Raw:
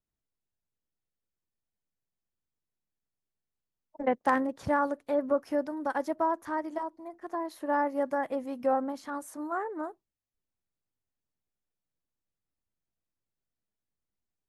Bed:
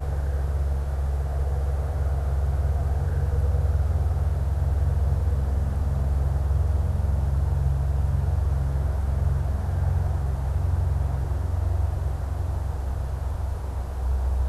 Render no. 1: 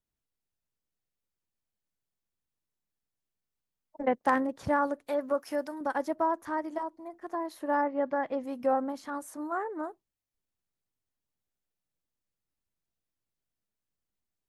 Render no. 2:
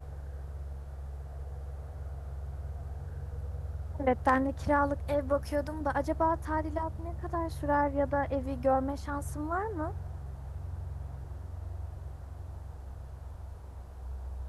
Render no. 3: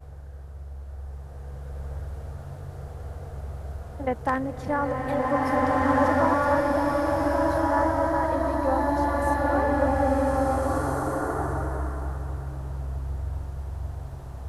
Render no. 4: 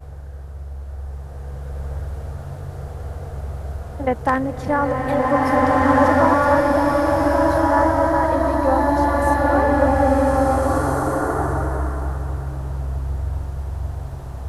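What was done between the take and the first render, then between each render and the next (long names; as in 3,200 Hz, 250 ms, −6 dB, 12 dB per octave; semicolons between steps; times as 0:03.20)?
0:05.07–0:05.81: spectral tilt +2.5 dB per octave; 0:07.81–0:08.42: low-pass filter 2,700 Hz → 6,800 Hz 24 dB per octave
mix in bed −15.5 dB
slow-attack reverb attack 1,780 ms, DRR −7.5 dB
level +6.5 dB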